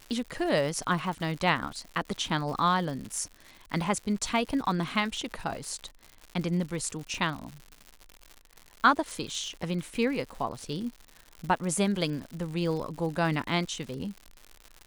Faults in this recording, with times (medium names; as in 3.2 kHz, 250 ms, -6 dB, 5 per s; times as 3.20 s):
crackle 140 per s -36 dBFS